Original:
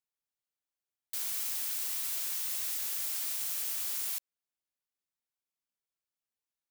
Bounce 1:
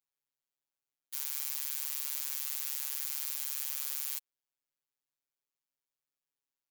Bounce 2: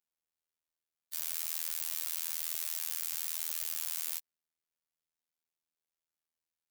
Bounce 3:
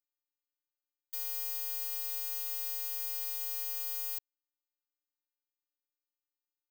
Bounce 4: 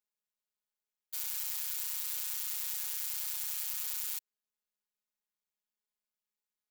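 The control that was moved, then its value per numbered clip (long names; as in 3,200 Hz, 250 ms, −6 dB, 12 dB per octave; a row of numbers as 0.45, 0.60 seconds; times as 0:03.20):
phases set to zero, frequency: 140, 81, 300, 210 Hertz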